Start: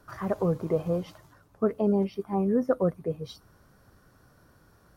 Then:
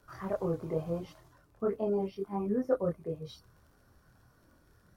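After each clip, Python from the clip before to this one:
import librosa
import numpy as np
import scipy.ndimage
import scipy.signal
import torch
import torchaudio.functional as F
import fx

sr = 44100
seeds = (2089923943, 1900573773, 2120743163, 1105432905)

y = fx.chorus_voices(x, sr, voices=4, hz=0.69, base_ms=25, depth_ms=1.8, mix_pct=50)
y = fx.dmg_crackle(y, sr, seeds[0], per_s=46.0, level_db=-55.0)
y = y * librosa.db_to_amplitude(-2.5)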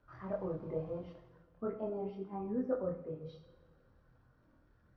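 y = fx.air_absorb(x, sr, metres=270.0)
y = fx.rev_double_slope(y, sr, seeds[1], early_s=0.68, late_s=2.4, knee_db=-18, drr_db=4.5)
y = y * librosa.db_to_amplitude(-6.0)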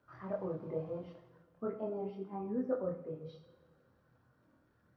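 y = scipy.signal.sosfilt(scipy.signal.butter(2, 110.0, 'highpass', fs=sr, output='sos'), x)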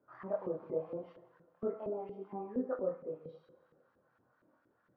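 y = fx.filter_lfo_bandpass(x, sr, shape='saw_up', hz=4.3, low_hz=310.0, high_hz=1900.0, q=1.0)
y = y * librosa.db_to_amplitude(3.5)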